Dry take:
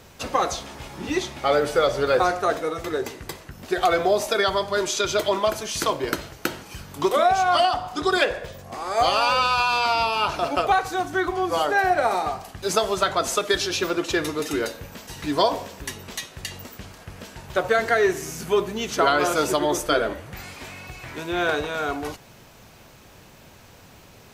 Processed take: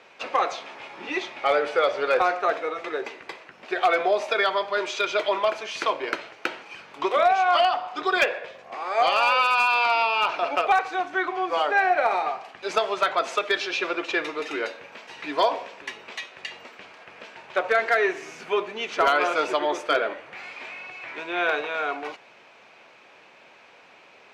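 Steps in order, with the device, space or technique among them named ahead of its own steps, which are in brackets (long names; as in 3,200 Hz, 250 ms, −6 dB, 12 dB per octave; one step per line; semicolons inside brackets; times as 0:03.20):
megaphone (band-pass filter 470–3,200 Hz; parametric band 2,400 Hz +7 dB 0.37 octaves; hard clipping −12 dBFS, distortion −26 dB)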